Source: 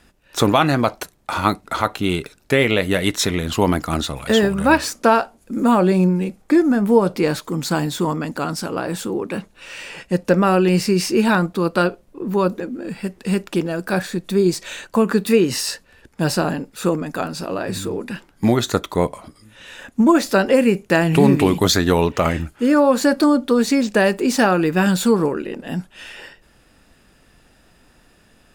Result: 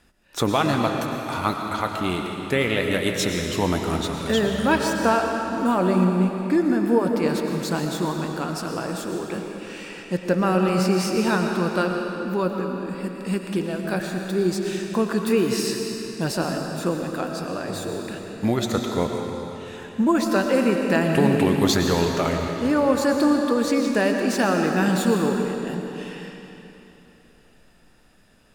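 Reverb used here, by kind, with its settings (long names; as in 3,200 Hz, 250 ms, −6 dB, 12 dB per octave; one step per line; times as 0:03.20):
comb and all-pass reverb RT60 3.3 s, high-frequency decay 0.9×, pre-delay 70 ms, DRR 2.5 dB
level −6 dB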